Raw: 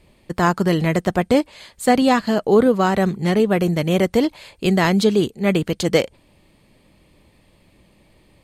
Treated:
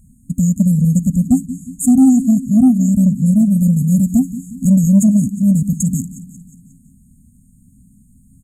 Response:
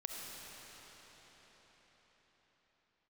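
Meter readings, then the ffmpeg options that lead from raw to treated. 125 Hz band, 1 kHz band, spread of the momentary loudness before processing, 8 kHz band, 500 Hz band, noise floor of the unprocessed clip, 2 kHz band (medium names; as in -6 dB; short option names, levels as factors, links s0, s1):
+8.5 dB, under -15 dB, 5 LU, +9.5 dB, -21.5 dB, -57 dBFS, under -40 dB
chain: -af "afftfilt=real='re*(1-between(b*sr/4096,270,6500))':imag='im*(1-between(b*sr/4096,270,6500))':win_size=4096:overlap=0.75,equalizer=f=1500:w=0.3:g=13.5,aecho=1:1:180|360|540|720|900:0.178|0.0978|0.0538|0.0296|0.0163,acontrast=70"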